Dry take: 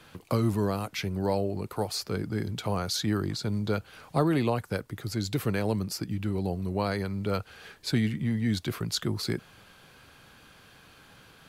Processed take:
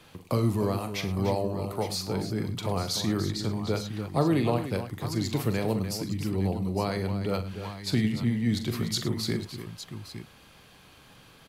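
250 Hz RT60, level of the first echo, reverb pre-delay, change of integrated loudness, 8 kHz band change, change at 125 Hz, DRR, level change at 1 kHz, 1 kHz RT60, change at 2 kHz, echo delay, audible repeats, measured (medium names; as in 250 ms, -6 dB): no reverb, -10.5 dB, no reverb, +1.0 dB, +1.0 dB, +1.5 dB, no reverb, +0.5 dB, no reverb, -1.0 dB, 42 ms, 4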